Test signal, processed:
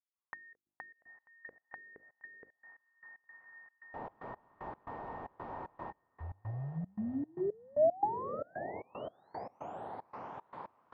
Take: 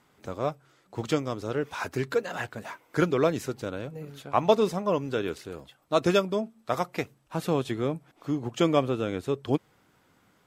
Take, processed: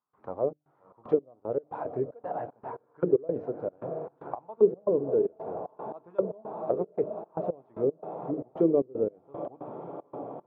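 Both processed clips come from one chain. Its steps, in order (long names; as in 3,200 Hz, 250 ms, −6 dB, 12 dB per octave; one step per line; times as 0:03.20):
high-pass filter 140 Hz 6 dB per octave
in parallel at −11 dB: bit reduction 7 bits
on the sum: high-frequency loss of the air 71 metres
mains-hum notches 50/100/150/200/250/300/350 Hz
on a send: feedback delay with all-pass diffusion 708 ms, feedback 77%, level −13 dB
on the sum: gate pattern ".xxx.xx.x..x" 114 BPM −24 dB
envelope-controlled low-pass 420–1,100 Hz down, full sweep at −22 dBFS
level −6.5 dB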